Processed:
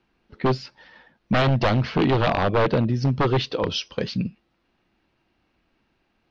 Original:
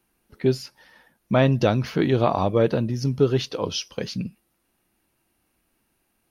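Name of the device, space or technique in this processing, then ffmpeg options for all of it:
synthesiser wavefolder: -af "aeval=exprs='0.141*(abs(mod(val(0)/0.141+3,4)-2)-1)':channel_layout=same,lowpass=frequency=4600:width=0.5412,lowpass=frequency=4600:width=1.3066,volume=3.5dB"

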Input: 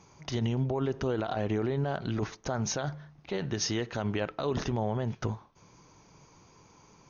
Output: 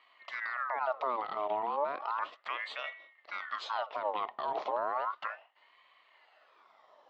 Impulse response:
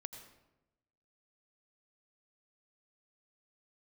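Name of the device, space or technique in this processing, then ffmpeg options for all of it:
voice changer toy: -af "aeval=exprs='val(0)*sin(2*PI*1300*n/s+1300*0.6/0.34*sin(2*PI*0.34*n/s))':channel_layout=same,highpass=600,equalizer=frequency=620:width_type=q:width=4:gain=8,equalizer=frequency=1100:width_type=q:width=4:gain=4,equalizer=frequency=1600:width_type=q:width=4:gain=-10,equalizer=frequency=2400:width_type=q:width=4:gain=-6,lowpass=frequency=3500:width=0.5412,lowpass=frequency=3500:width=1.3066"

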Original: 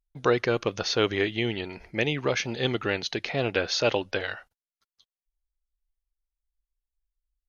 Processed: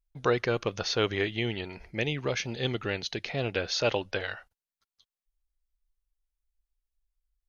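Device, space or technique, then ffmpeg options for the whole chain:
low shelf boost with a cut just above: -filter_complex "[0:a]asettb=1/sr,asplit=3[link_01][link_02][link_03];[link_01]atrim=end=1.864[link_04];[link_02]atrim=start=1.86:end=3.76,asetpts=PTS-STARTPTS,afade=type=in:duration=0.004:curve=qsin,afade=type=out:start_time=1.896:duration=0.004:curve=qsin,equalizer=frequency=1100:width_type=o:width=1.9:gain=-3.5[link_05];[link_03]atrim=start=3.756[link_06];[link_04][link_05]acrossfade=duration=0.004:curve1=hsin:curve2=qsin[link_07];[link_07][link_06]acrossfade=duration=0.004:curve1=qsin:curve2=hsin,lowshelf=frequency=82:gain=6,equalizer=frequency=300:width_type=o:width=0.77:gain=-2.5,volume=-2.5dB"

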